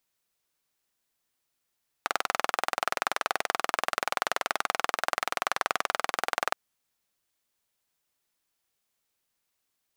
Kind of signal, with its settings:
pulse-train model of a single-cylinder engine, steady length 4.47 s, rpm 2,500, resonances 760/1,200 Hz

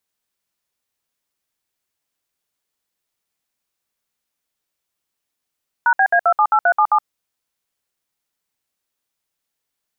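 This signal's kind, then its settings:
touch tones "#BA278377", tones 70 ms, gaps 62 ms, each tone −13.5 dBFS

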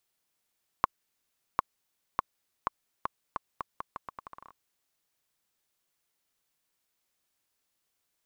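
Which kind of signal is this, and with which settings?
bouncing ball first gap 0.75 s, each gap 0.8, 1,090 Hz, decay 17 ms −8 dBFS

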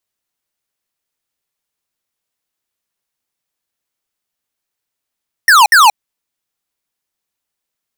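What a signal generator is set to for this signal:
repeated falling chirps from 1,900 Hz, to 790 Hz, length 0.18 s square, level −6 dB, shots 2, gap 0.06 s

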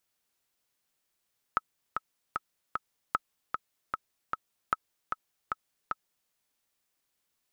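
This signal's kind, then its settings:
click track 152 BPM, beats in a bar 4, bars 3, 1,290 Hz, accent 5 dB −12 dBFS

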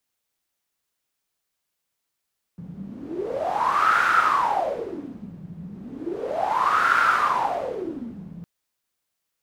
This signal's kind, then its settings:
wind from filtered noise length 5.86 s, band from 170 Hz, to 1,400 Hz, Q 11, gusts 2, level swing 19 dB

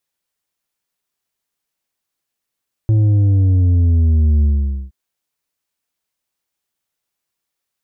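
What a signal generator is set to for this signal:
bass drop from 110 Hz, over 2.02 s, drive 6 dB, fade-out 0.48 s, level −10.5 dB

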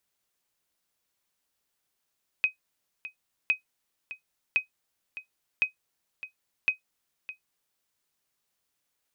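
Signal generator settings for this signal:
ping with an echo 2,520 Hz, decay 0.12 s, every 1.06 s, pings 5, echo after 0.61 s, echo −15 dB −14.5 dBFS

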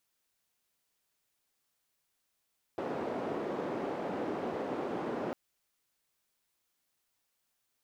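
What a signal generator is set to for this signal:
band-limited noise 290–460 Hz, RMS −36 dBFS 2.55 s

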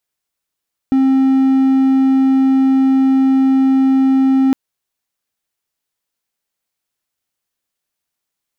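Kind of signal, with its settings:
tone triangle 266 Hz −7 dBFS 3.61 s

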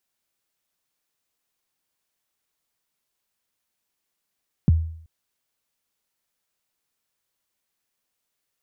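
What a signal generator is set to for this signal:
synth kick length 0.38 s, from 220 Hz, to 81 Hz, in 21 ms, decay 0.61 s, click off, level −10 dB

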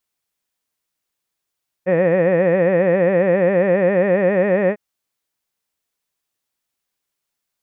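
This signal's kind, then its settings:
vowel by formant synthesis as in head, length 2.90 s, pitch 174 Hz, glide +2 semitones, vibrato 7.4 Hz, vibrato depth 1.4 semitones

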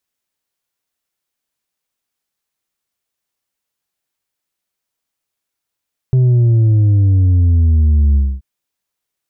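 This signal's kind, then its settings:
bass drop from 130 Hz, over 2.28 s, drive 4 dB, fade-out 0.25 s, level −8.5 dB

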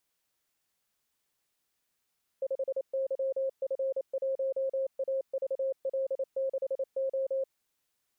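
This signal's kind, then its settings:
Morse code "5YF1AVL6O" 28 words per minute 535 Hz −27.5 dBFS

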